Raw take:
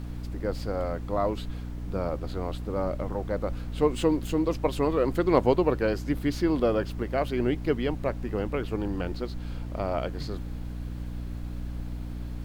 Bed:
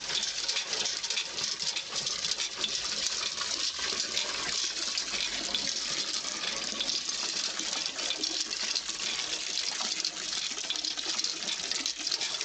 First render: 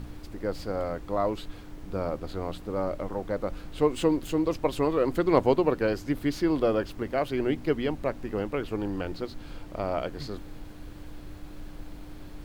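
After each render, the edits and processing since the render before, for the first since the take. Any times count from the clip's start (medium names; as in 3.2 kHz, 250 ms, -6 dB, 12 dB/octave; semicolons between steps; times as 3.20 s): de-hum 60 Hz, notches 4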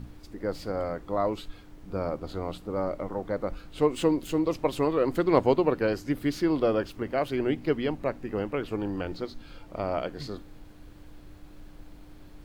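noise print and reduce 6 dB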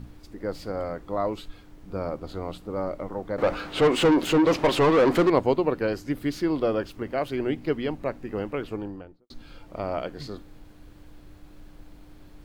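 3.38–5.30 s: overdrive pedal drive 27 dB, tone 1.9 kHz, clips at -11 dBFS; 8.59–9.30 s: studio fade out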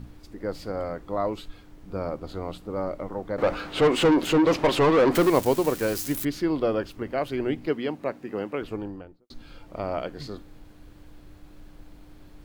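5.15–6.25 s: zero-crossing glitches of -23 dBFS; 7.67–8.62 s: high-pass 160 Hz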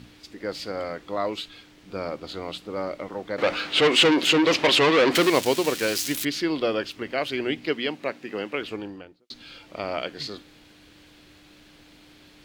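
frequency weighting D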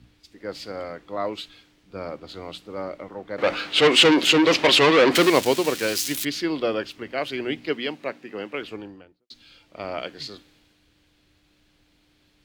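three bands expanded up and down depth 40%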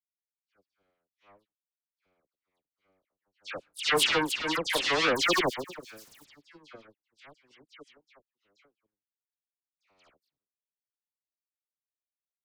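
power-law waveshaper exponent 3; phase dispersion lows, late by 111 ms, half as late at 2.1 kHz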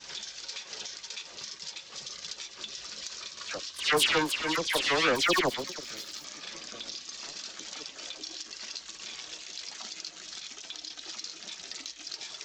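add bed -9 dB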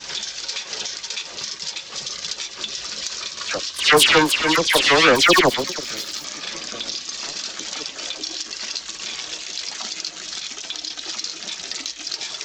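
trim +11.5 dB; peak limiter -1 dBFS, peak gain reduction 2.5 dB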